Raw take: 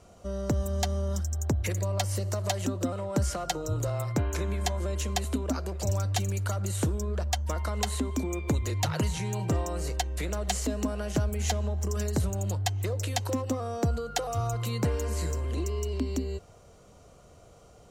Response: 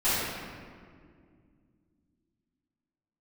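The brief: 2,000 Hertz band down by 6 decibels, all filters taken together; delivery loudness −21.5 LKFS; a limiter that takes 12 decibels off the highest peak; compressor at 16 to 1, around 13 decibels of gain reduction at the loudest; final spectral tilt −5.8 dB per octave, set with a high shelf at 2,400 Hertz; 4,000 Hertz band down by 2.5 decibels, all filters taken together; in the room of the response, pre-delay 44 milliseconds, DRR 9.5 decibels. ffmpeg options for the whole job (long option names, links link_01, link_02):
-filter_complex "[0:a]equalizer=frequency=2000:width_type=o:gain=-9,highshelf=frequency=2400:gain=4.5,equalizer=frequency=4000:width_type=o:gain=-5,acompressor=threshold=-36dB:ratio=16,alimiter=level_in=7.5dB:limit=-24dB:level=0:latency=1,volume=-7.5dB,asplit=2[link_01][link_02];[1:a]atrim=start_sample=2205,adelay=44[link_03];[link_02][link_03]afir=irnorm=-1:irlink=0,volume=-23.5dB[link_04];[link_01][link_04]amix=inputs=2:normalize=0,volume=19dB"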